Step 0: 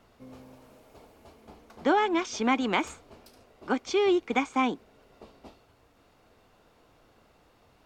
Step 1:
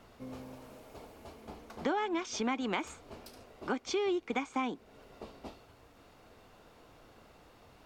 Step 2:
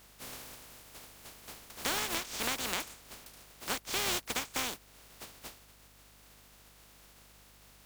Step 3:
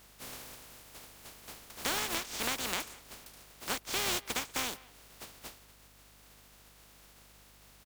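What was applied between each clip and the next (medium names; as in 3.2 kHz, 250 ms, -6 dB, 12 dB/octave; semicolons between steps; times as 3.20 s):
compression 2.5:1, threshold -38 dBFS, peak gain reduction 13 dB; trim +3 dB
spectral contrast reduction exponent 0.23; hum 50 Hz, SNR 24 dB; trim -1 dB
speakerphone echo 190 ms, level -20 dB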